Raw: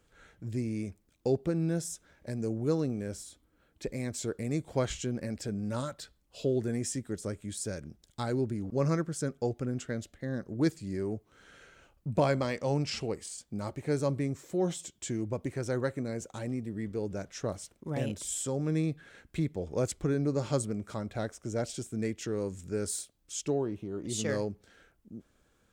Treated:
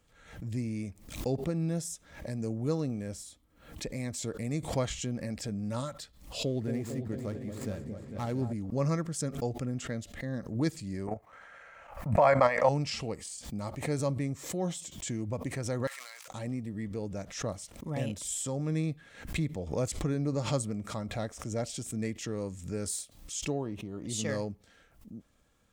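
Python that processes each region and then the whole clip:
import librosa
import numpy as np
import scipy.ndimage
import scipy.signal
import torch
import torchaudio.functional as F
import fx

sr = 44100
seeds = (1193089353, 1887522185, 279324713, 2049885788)

y = fx.chain(x, sr, fx.median_filter(points=15),
    fx.quant_float(bits=8),
    fx.echo_opening(ms=225, hz=750, octaves=2, feedback_pct=70, wet_db=-6), at=(6.45, 8.53))
y = fx.chain(y, sr, fx.band_shelf(hz=1100.0, db=15.5, octaves=2.4),
    fx.level_steps(step_db=10), at=(11.07, 12.69))
y = fx.chain(y, sr, fx.dead_time(dead_ms=0.093),
    fx.highpass(hz=1100.0, slope=24),
    fx.sustainer(db_per_s=26.0), at=(15.87, 16.28))
y = fx.peak_eq(y, sr, hz=380.0, db=-7.5, octaves=0.45)
y = fx.notch(y, sr, hz=1500.0, q=8.3)
y = fx.pre_swell(y, sr, db_per_s=100.0)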